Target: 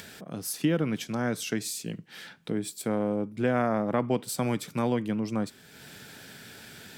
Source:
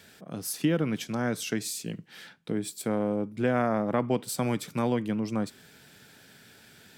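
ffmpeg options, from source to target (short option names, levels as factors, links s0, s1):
-af "acompressor=mode=upward:threshold=0.0126:ratio=2.5"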